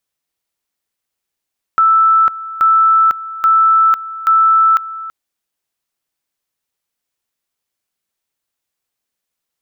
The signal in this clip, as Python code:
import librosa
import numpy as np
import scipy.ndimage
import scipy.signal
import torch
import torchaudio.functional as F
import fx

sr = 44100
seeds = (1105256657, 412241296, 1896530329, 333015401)

y = fx.two_level_tone(sr, hz=1320.0, level_db=-7.0, drop_db=16.5, high_s=0.5, low_s=0.33, rounds=4)